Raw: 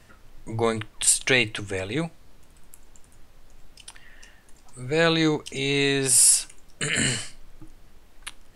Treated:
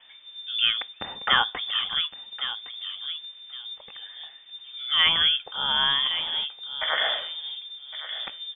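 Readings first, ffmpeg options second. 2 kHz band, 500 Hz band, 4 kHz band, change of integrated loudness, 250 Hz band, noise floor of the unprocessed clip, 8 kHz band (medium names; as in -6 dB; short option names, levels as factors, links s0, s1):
-1.0 dB, -15.0 dB, +8.5 dB, -3.0 dB, -21.0 dB, -53 dBFS, under -40 dB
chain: -filter_complex "[0:a]asplit=2[s0][s1];[s1]adelay=1112,lowpass=f=850:p=1,volume=0.473,asplit=2[s2][s3];[s3]adelay=1112,lowpass=f=850:p=1,volume=0.32,asplit=2[s4][s5];[s5]adelay=1112,lowpass=f=850:p=1,volume=0.32,asplit=2[s6][s7];[s7]adelay=1112,lowpass=f=850:p=1,volume=0.32[s8];[s0][s2][s4][s6][s8]amix=inputs=5:normalize=0,lowpass=f=3100:t=q:w=0.5098,lowpass=f=3100:t=q:w=0.6013,lowpass=f=3100:t=q:w=0.9,lowpass=f=3100:t=q:w=2.563,afreqshift=-3600"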